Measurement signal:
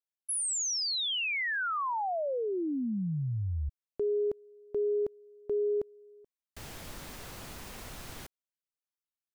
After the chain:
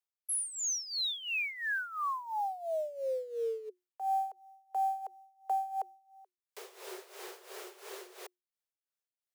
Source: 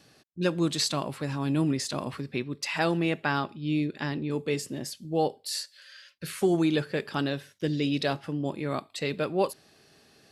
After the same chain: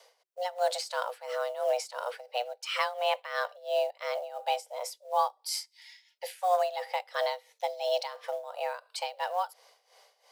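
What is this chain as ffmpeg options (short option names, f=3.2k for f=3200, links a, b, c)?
-af "acrusher=bits=7:mode=log:mix=0:aa=0.000001,tremolo=f=2.9:d=0.81,afreqshift=360"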